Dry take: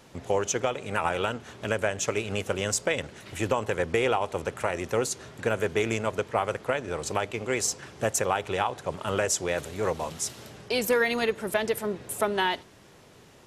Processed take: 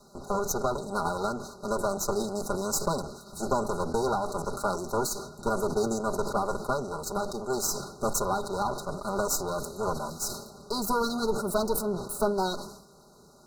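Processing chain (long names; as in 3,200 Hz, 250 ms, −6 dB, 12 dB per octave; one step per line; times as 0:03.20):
lower of the sound and its delayed copy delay 5 ms
brick-wall band-stop 1,500–3,800 Hz
level that may fall only so fast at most 74 dB per second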